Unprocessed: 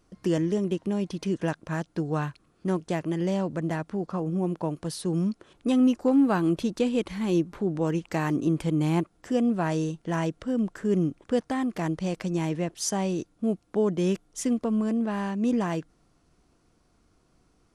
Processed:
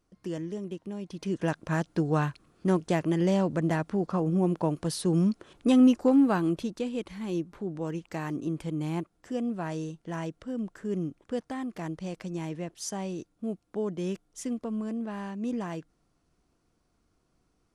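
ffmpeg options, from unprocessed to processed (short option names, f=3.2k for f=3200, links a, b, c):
-af "volume=2dB,afade=t=in:st=1.04:d=0.66:silence=0.266073,afade=t=out:st=5.82:d=0.97:silence=0.354813"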